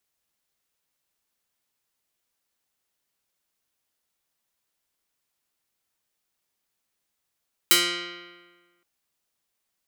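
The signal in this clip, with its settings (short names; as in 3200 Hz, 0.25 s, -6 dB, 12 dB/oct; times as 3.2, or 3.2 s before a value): plucked string F3, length 1.12 s, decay 1.47 s, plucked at 0.2, medium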